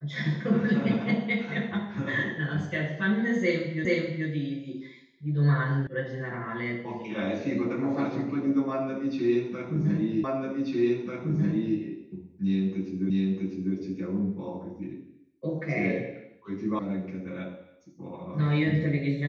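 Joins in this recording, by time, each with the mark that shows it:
3.85 s: repeat of the last 0.43 s
5.87 s: sound stops dead
10.24 s: repeat of the last 1.54 s
13.10 s: repeat of the last 0.65 s
16.79 s: sound stops dead

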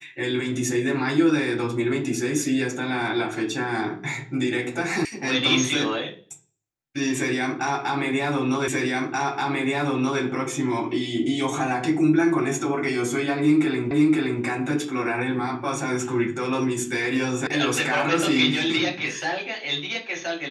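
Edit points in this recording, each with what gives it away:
5.05 s: sound stops dead
8.68 s: repeat of the last 1.53 s
13.91 s: repeat of the last 0.52 s
17.47 s: sound stops dead

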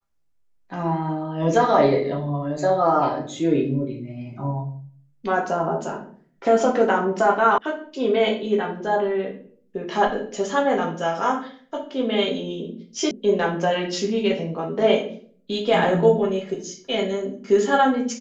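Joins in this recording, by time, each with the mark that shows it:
7.58 s: sound stops dead
13.11 s: sound stops dead

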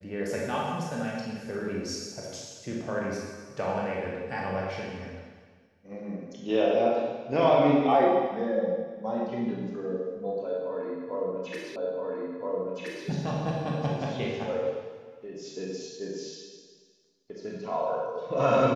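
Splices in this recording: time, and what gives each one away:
11.76 s: repeat of the last 1.32 s

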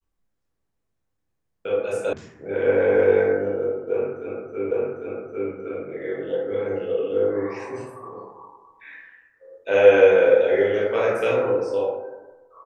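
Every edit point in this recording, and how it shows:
2.13 s: sound stops dead
4.71 s: repeat of the last 0.8 s

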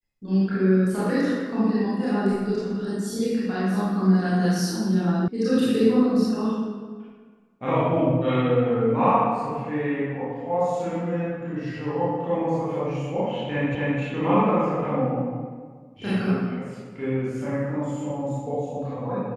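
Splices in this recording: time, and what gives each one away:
5.28 s: sound stops dead
13.75 s: repeat of the last 0.26 s

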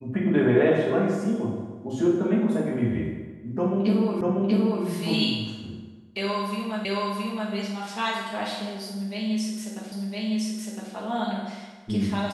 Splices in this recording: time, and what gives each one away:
4.21 s: repeat of the last 0.64 s
6.85 s: repeat of the last 0.67 s
9.92 s: repeat of the last 1.01 s

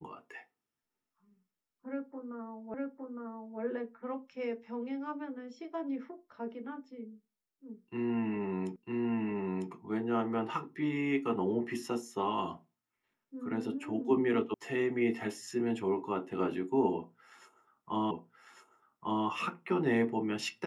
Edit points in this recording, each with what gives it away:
2.74 s: repeat of the last 0.86 s
8.76 s: repeat of the last 0.95 s
14.54 s: sound stops dead
18.11 s: repeat of the last 1.15 s

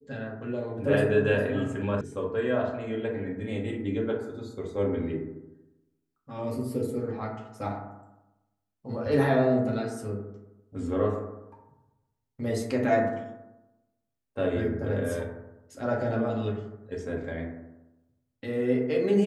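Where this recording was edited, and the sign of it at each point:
2.01 s: sound stops dead

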